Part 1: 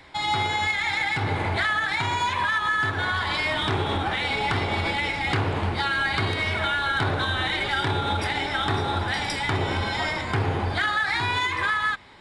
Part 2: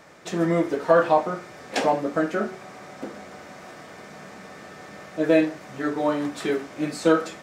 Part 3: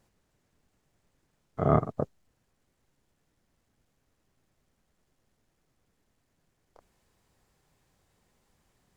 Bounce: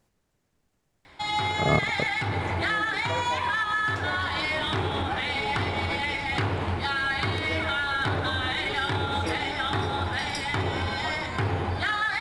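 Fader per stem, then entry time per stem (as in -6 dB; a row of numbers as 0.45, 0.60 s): -2.5, -17.0, -0.5 dB; 1.05, 2.20, 0.00 s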